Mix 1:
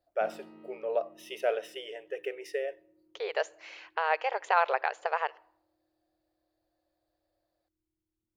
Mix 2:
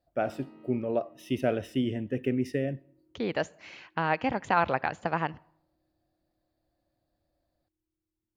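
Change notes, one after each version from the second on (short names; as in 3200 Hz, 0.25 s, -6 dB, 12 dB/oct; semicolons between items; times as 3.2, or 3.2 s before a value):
speech: remove brick-wall FIR high-pass 390 Hz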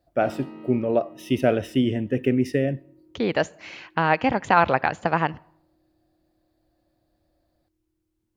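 speech +7.0 dB; background +11.5 dB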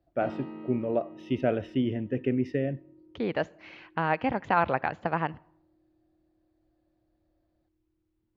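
speech -5.5 dB; master: add air absorption 210 m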